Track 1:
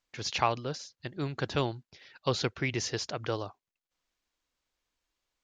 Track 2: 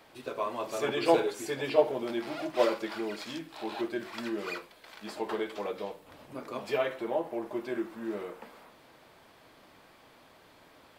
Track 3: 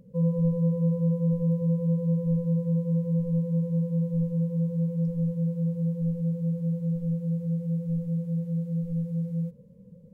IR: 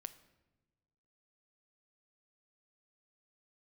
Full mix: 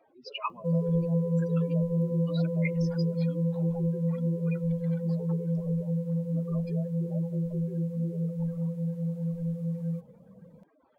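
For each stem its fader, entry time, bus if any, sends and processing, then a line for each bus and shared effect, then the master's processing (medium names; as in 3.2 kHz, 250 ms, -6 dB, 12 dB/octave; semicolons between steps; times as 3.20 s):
+0.5 dB, 0.00 s, send -20 dB, high-pass 1.2 kHz 24 dB/octave; whisper effect; spectral contrast expander 4:1
-7.5 dB, 0.00 s, send -14.5 dB, spectral contrast enhancement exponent 3.1; reverb removal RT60 0.83 s; compression, threshold -36 dBFS, peak gain reduction 16.5 dB
+1.5 dB, 0.50 s, no send, bass shelf 120 Hz -11.5 dB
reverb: on, pre-delay 7 ms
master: none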